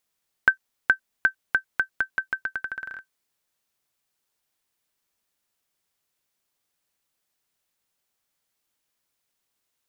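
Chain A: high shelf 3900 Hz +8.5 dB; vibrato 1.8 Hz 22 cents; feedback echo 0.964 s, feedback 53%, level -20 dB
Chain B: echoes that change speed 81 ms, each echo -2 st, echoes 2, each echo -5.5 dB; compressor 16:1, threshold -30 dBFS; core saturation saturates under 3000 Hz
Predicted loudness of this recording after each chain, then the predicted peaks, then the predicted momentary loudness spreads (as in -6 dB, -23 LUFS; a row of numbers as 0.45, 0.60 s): -26.0, -39.5 LUFS; -4.0, -13.0 dBFS; 12, 12 LU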